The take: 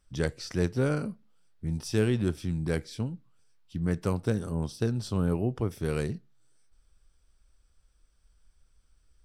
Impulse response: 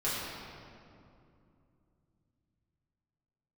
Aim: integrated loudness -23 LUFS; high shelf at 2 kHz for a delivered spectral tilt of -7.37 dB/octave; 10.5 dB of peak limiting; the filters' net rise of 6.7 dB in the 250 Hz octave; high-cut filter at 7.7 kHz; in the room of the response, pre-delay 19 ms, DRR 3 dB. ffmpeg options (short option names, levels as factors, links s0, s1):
-filter_complex "[0:a]lowpass=7700,equalizer=f=250:t=o:g=9,highshelf=f=2000:g=6,alimiter=limit=0.112:level=0:latency=1,asplit=2[s0][s1];[1:a]atrim=start_sample=2205,adelay=19[s2];[s1][s2]afir=irnorm=-1:irlink=0,volume=0.282[s3];[s0][s3]amix=inputs=2:normalize=0,volume=1.88"